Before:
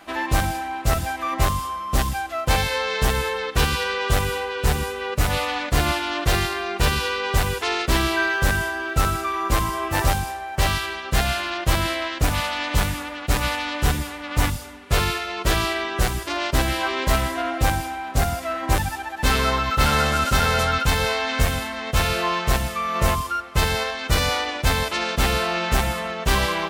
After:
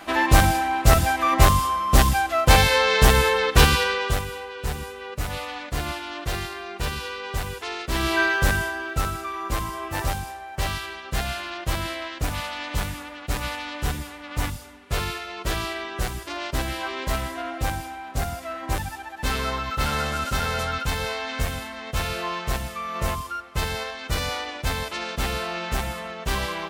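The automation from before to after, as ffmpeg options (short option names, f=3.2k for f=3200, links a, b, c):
-af "volume=14dB,afade=t=out:st=3.61:d=0.64:silence=0.223872,afade=t=in:st=7.89:d=0.31:silence=0.354813,afade=t=out:st=8.2:d=0.91:silence=0.446684"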